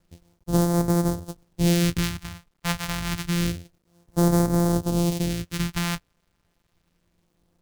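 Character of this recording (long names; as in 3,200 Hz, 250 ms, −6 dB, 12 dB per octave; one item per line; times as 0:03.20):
a buzz of ramps at a fixed pitch in blocks of 256 samples
phaser sweep stages 2, 0.28 Hz, lowest notch 350–2,600 Hz
a quantiser's noise floor 12 bits, dither none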